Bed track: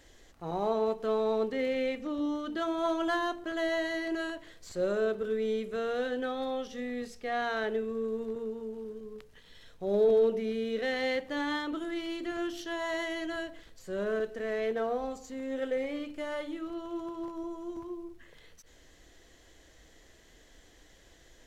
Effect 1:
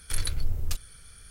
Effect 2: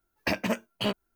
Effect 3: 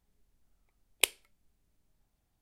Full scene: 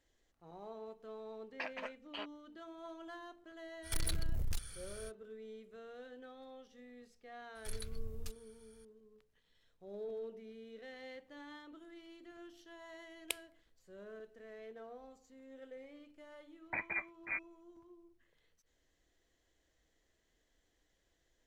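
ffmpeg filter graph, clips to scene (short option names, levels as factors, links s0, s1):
-filter_complex "[2:a]asplit=2[s0][s1];[1:a]asplit=2[s2][s3];[0:a]volume=0.106[s4];[s0]highpass=760,lowpass=2900[s5];[s2]asoftclip=type=tanh:threshold=0.0355[s6];[s1]lowpass=f=2200:t=q:w=0.5098,lowpass=f=2200:t=q:w=0.6013,lowpass=f=2200:t=q:w=0.9,lowpass=f=2200:t=q:w=2.563,afreqshift=-2600[s7];[s5]atrim=end=1.15,asetpts=PTS-STARTPTS,volume=0.299,afade=t=in:d=0.004:c=hsin,afade=t=out:st=1.146:d=0.004:c=hsin,adelay=1330[s8];[s6]atrim=end=1.3,asetpts=PTS-STARTPTS,volume=0.944,afade=t=in:d=0.05,afade=t=out:st=1.25:d=0.05,adelay=3820[s9];[s3]atrim=end=1.3,asetpts=PTS-STARTPTS,volume=0.168,afade=t=in:d=0.004:c=hsin,afade=t=out:st=1.296:d=0.004:c=hsin,adelay=7550[s10];[3:a]atrim=end=2.41,asetpts=PTS-STARTPTS,volume=0.224,afade=t=in:d=0.004:c=hsin,afade=t=out:st=2.406:d=0.004:c=hsin,adelay=12270[s11];[s7]atrim=end=1.15,asetpts=PTS-STARTPTS,volume=0.299,afade=t=in:d=0.004:c=hsin,afade=t=out:st=1.146:d=0.004:c=hsin,adelay=16460[s12];[s4][s8][s9][s10][s11][s12]amix=inputs=6:normalize=0"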